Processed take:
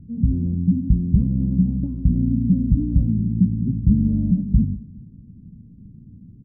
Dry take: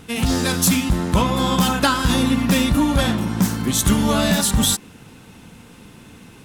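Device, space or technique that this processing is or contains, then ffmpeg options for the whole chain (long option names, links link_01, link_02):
the neighbour's flat through the wall: -filter_complex "[0:a]lowpass=frequency=220:width=0.5412,lowpass=frequency=220:width=1.3066,equalizer=frequency=83:width_type=o:width=0.94:gain=4,asettb=1/sr,asplit=3[link_01][link_02][link_03];[link_01]atrim=end=2.044[link_04];[link_02]atrim=start=2.04:end=2.94,asetpts=PTS-STARTPTS,afade=type=in:duration=0.004:curve=qsin,afade=type=out:start_time=0.896:duration=0.004:curve=qsin,lowpass=1400[link_05];[link_03]atrim=start=2.936[link_06];[link_04][link_05]acrossfade=duration=0.004:curve1=hsin:curve2=qsin[link_07];[link_07][link_06]acrossfade=duration=0.004:curve1=qsin:curve2=hsin,equalizer=frequency=77:width_type=o:width=0.4:gain=-5,asplit=2[link_08][link_09];[link_09]adelay=214,lowpass=frequency=2000:poles=1,volume=-21dB,asplit=2[link_10][link_11];[link_11]adelay=214,lowpass=frequency=2000:poles=1,volume=0.44,asplit=2[link_12][link_13];[link_13]adelay=214,lowpass=frequency=2000:poles=1,volume=0.44[link_14];[link_08][link_10][link_12][link_14]amix=inputs=4:normalize=0,volume=2.5dB"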